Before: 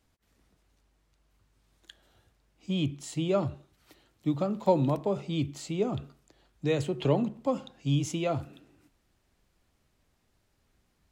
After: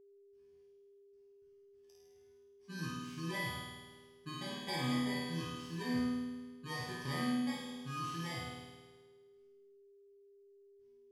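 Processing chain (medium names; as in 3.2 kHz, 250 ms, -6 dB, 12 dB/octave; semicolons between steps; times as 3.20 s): bit-reversed sample order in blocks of 32 samples; low-pass 5.4 kHz 12 dB/octave; gate with hold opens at -60 dBFS; peaking EQ 500 Hz -9.5 dB 1.4 oct; chord resonator E2 fifth, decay 0.66 s; flutter echo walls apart 9 m, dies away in 1.4 s; whistle 400 Hz -66 dBFS; trim +6 dB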